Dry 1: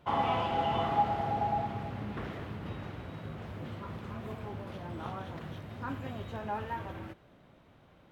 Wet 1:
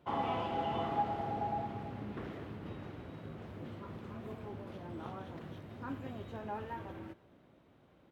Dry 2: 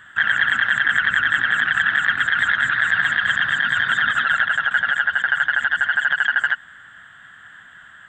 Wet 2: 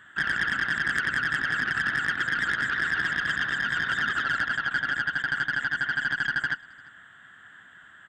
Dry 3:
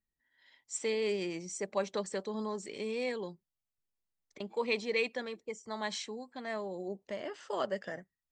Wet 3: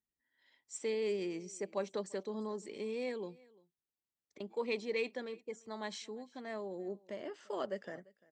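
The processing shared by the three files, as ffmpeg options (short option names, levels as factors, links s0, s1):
-filter_complex "[0:a]aeval=exprs='0.708*(cos(1*acos(clip(val(0)/0.708,-1,1)))-cos(1*PI/2))+0.0708*(cos(2*acos(clip(val(0)/0.708,-1,1)))-cos(2*PI/2))+0.2*(cos(3*acos(clip(val(0)/0.708,-1,1)))-cos(3*PI/2))+0.1*(cos(5*acos(clip(val(0)/0.708,-1,1)))-cos(5*PI/2))+0.0126*(cos(6*acos(clip(val(0)/0.708,-1,1)))-cos(6*PI/2))':c=same,highpass=42,equalizer=f=330:t=o:w=1.4:g=6,asplit=2[s0][s1];[s1]aecho=0:1:345:0.0631[s2];[s0][s2]amix=inputs=2:normalize=0,volume=0.531"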